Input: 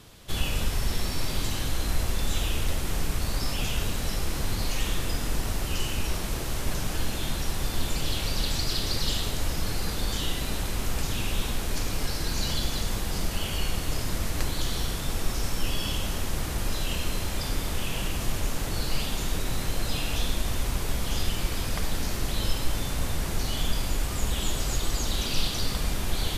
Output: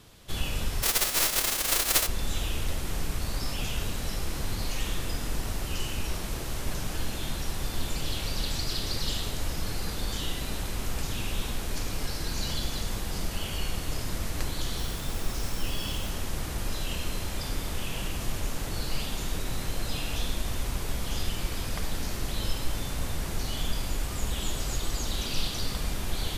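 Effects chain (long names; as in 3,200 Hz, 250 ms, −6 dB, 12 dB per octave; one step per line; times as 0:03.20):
0:00.82–0:02.06: spectral envelope flattened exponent 0.1
0:14.77–0:16.09: background noise violet −50 dBFS
level −3 dB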